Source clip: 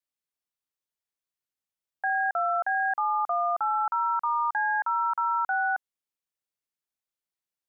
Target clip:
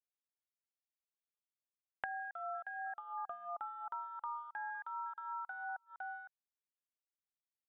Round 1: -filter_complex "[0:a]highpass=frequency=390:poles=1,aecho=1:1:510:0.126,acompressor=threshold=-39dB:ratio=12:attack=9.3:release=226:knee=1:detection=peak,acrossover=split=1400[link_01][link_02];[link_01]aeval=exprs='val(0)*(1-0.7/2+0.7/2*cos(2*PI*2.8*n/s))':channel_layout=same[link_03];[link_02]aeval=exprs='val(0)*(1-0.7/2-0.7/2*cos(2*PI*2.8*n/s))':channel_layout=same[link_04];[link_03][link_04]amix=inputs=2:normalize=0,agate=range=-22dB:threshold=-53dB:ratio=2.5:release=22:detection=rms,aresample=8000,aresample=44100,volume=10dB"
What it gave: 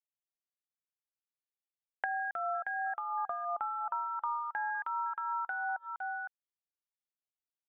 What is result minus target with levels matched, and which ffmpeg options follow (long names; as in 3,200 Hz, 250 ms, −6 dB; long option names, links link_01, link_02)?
downward compressor: peak gain reduction −7.5 dB
-filter_complex "[0:a]highpass=frequency=390:poles=1,aecho=1:1:510:0.126,acompressor=threshold=-47dB:ratio=12:attack=9.3:release=226:knee=1:detection=peak,acrossover=split=1400[link_01][link_02];[link_01]aeval=exprs='val(0)*(1-0.7/2+0.7/2*cos(2*PI*2.8*n/s))':channel_layout=same[link_03];[link_02]aeval=exprs='val(0)*(1-0.7/2-0.7/2*cos(2*PI*2.8*n/s))':channel_layout=same[link_04];[link_03][link_04]amix=inputs=2:normalize=0,agate=range=-22dB:threshold=-53dB:ratio=2.5:release=22:detection=rms,aresample=8000,aresample=44100,volume=10dB"